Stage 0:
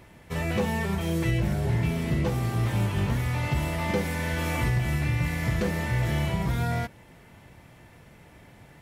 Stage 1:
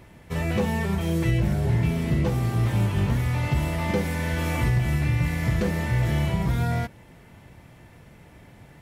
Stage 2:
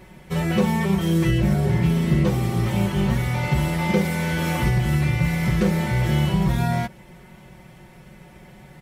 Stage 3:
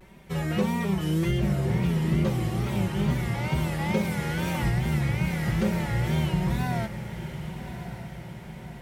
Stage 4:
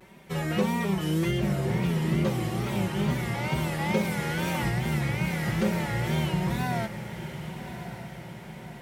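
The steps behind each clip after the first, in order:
bass shelf 380 Hz +3.5 dB
comb 5.4 ms, depth 91%; trim +1.5 dB
wow and flutter 110 cents; echo that smears into a reverb 1150 ms, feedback 53%, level -10.5 dB; trim -5.5 dB
high-pass 170 Hz 6 dB/octave; trim +1.5 dB

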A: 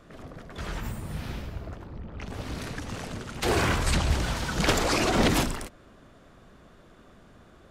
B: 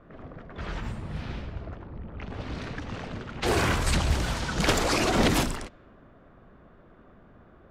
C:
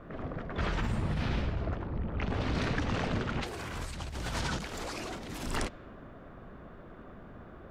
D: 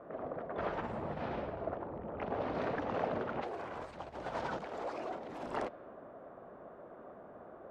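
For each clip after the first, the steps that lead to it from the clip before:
level-controlled noise filter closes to 1.6 kHz, open at -23 dBFS
compressor with a negative ratio -34 dBFS, ratio -1
band-pass filter 640 Hz, Q 1.5; trim +4 dB

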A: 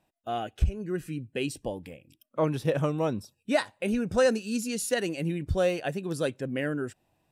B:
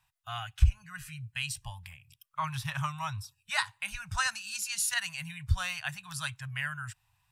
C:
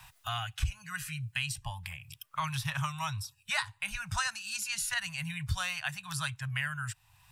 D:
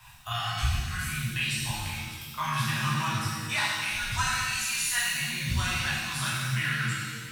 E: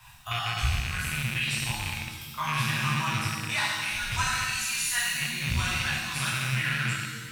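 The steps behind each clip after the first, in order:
elliptic band-stop 120–990 Hz, stop band 50 dB; trim +3.5 dB
three bands compressed up and down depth 70%
pitch-shifted reverb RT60 1.6 s, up +7 st, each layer -8 dB, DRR -8 dB; trim -3 dB
rattle on loud lows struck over -35 dBFS, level -21 dBFS

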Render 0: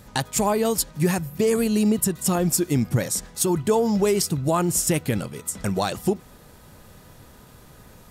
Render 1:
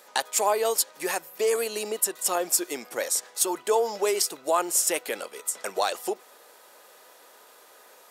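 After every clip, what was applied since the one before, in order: high-pass 440 Hz 24 dB/octave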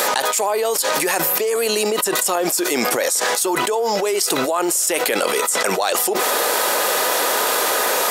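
level flattener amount 100%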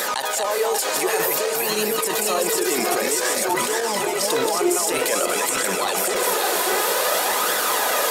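backward echo that repeats 293 ms, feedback 70%, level -3 dB; flange 0.53 Hz, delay 0.5 ms, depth 2.4 ms, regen +50%; trim -1 dB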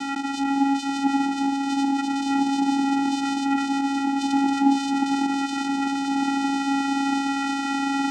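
vocoder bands 4, square 276 Hz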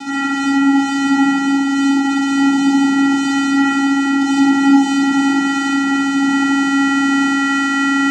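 reverberation, pre-delay 49 ms, DRR -8.5 dB

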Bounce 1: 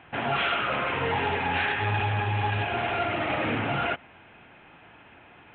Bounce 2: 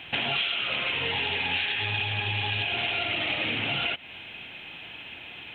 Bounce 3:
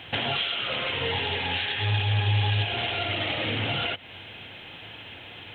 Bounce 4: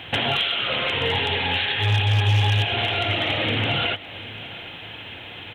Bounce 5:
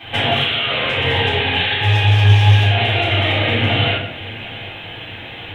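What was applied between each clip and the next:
resonant high shelf 2.1 kHz +14 dB, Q 1.5; compression 10:1, threshold -28 dBFS, peak gain reduction 15 dB; trim +3 dB
graphic EQ with 31 bands 100 Hz +10 dB, 500 Hz +5 dB, 2.5 kHz -7 dB; trim +2 dB
overload inside the chain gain 18 dB; delay 744 ms -18.5 dB; trim +5 dB
reverberation RT60 0.65 s, pre-delay 3 ms, DRR -13 dB; trim -7.5 dB

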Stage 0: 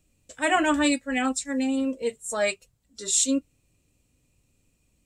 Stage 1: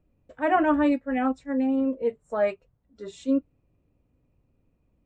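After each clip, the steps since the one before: low-pass 1.1 kHz 12 dB/octave; bass shelf 420 Hz -3 dB; trim +3.5 dB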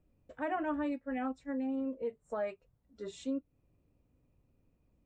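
compression 2.5:1, threshold -33 dBFS, peak gain reduction 11.5 dB; trim -3.5 dB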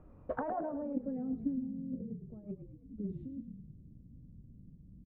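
compressor with a negative ratio -45 dBFS, ratio -1; frequency-shifting echo 108 ms, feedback 56%, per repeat -41 Hz, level -10 dB; low-pass sweep 1.2 kHz -> 190 Hz, 0.23–1.73 s; trim +5.5 dB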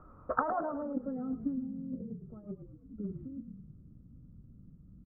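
resonant low-pass 1.3 kHz, resonance Q 9.6

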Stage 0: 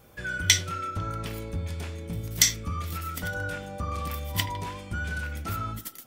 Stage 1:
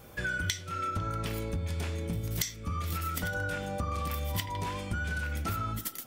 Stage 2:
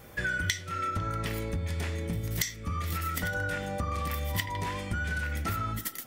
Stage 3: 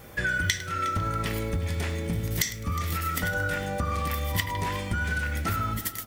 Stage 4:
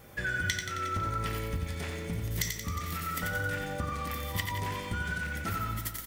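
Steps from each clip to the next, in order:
compression 16:1, threshold -33 dBFS, peak gain reduction 20 dB; trim +4 dB
peaking EQ 1.9 kHz +8.5 dB 0.25 oct; trim +1 dB
delay 361 ms -17 dB; bit-crushed delay 104 ms, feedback 35%, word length 7-bit, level -15 dB; trim +3.5 dB
feedback delay 89 ms, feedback 57%, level -6 dB; trim -6 dB

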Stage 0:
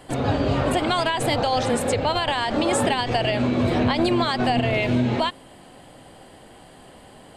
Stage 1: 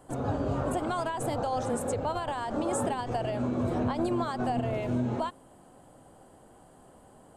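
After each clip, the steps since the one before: high-order bell 3 kHz -11.5 dB; trim -8 dB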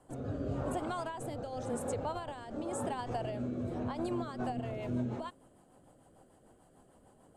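rotary cabinet horn 0.9 Hz, later 6.7 Hz, at 3.94 s; trim -5 dB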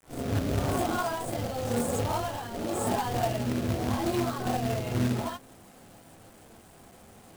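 gated-style reverb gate 90 ms rising, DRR -6.5 dB; companded quantiser 4-bit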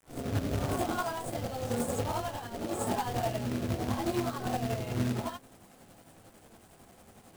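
tremolo 11 Hz, depth 43%; trim -1.5 dB

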